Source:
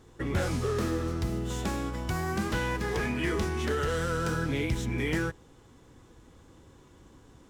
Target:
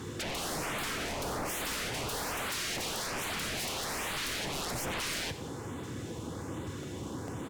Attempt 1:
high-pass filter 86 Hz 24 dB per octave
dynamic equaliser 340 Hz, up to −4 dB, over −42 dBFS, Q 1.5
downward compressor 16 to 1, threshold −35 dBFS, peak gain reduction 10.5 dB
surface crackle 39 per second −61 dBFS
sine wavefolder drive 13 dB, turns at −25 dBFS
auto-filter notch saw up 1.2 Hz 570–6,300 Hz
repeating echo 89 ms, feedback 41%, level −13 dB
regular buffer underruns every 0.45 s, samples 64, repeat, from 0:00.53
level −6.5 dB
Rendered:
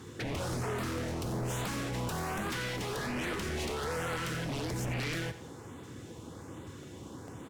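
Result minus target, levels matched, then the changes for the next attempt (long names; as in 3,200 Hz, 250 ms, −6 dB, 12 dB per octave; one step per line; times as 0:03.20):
sine wavefolder: distortion −29 dB
change: sine wavefolder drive 20 dB, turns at −25 dBFS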